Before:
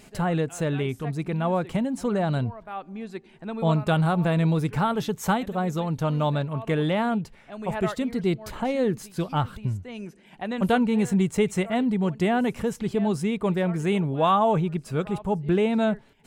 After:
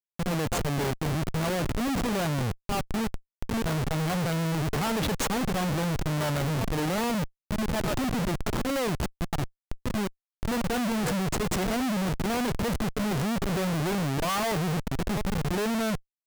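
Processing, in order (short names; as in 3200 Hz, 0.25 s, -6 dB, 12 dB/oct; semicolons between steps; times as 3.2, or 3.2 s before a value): HPF 140 Hz 24 dB/oct; auto swell 0.147 s; vibrato 1.2 Hz 13 cents; Schmitt trigger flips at -34.5 dBFS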